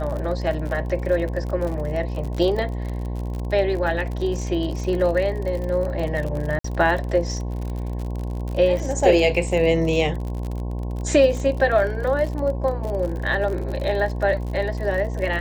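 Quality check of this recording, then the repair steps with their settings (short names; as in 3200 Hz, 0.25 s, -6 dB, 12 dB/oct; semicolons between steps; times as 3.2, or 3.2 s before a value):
buzz 60 Hz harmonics 18 -27 dBFS
crackle 51/s -28 dBFS
6.59–6.64 gap 54 ms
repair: de-click; de-hum 60 Hz, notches 18; interpolate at 6.59, 54 ms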